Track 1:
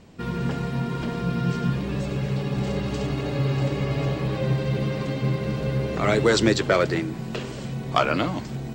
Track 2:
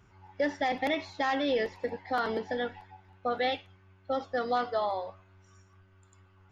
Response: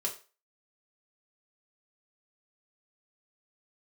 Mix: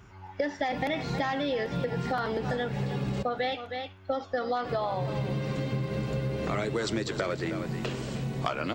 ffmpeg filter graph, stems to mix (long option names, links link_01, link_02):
-filter_complex "[0:a]adelay=500,volume=-1dB,asplit=3[link_01][link_02][link_03];[link_01]atrim=end=3.23,asetpts=PTS-STARTPTS,afade=type=out:start_time=3.226:duration=0.004:curve=hsin[link_04];[link_02]atrim=start=3.23:end=4.64,asetpts=PTS-STARTPTS,volume=0[link_05];[link_03]atrim=start=4.64,asetpts=PTS-STARTPTS,afade=type=in:duration=0.004:curve=hsin[link_06];[link_04][link_05][link_06]concat=n=3:v=0:a=1,asplit=2[link_07][link_08];[link_08]volume=-14dB[link_09];[1:a]acontrast=75,volume=1.5dB,asplit=3[link_10][link_11][link_12];[link_11]volume=-14.5dB[link_13];[link_12]apad=whole_len=407923[link_14];[link_07][link_14]sidechaincompress=threshold=-25dB:ratio=8:attack=16:release=178[link_15];[link_09][link_13]amix=inputs=2:normalize=0,aecho=0:1:314:1[link_16];[link_15][link_10][link_16]amix=inputs=3:normalize=0,acompressor=threshold=-27dB:ratio=6"